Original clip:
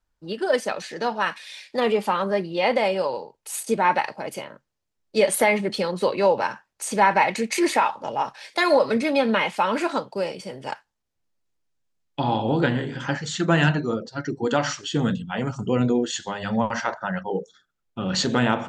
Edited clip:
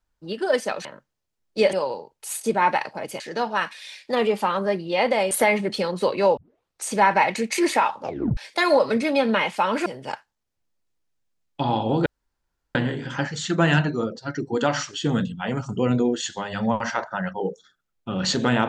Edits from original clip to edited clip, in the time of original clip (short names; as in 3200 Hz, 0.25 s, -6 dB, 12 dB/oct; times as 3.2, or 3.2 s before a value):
0.85–2.96 swap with 4.43–5.31
6.37 tape start 0.47 s
8.03 tape stop 0.34 s
9.86–10.45 cut
12.65 insert room tone 0.69 s